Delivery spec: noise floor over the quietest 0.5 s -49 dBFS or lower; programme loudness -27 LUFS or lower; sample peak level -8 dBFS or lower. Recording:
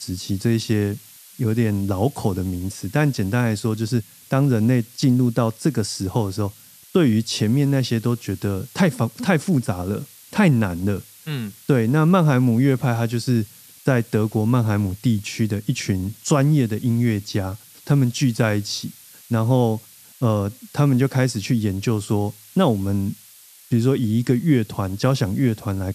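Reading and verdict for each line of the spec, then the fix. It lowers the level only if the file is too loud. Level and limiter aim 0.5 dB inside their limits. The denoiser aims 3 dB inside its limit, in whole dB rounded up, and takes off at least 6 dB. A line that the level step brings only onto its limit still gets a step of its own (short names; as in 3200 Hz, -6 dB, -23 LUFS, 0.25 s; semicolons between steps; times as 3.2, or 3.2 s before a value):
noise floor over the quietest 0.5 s -48 dBFS: fail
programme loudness -21.0 LUFS: fail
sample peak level -5.0 dBFS: fail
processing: gain -6.5 dB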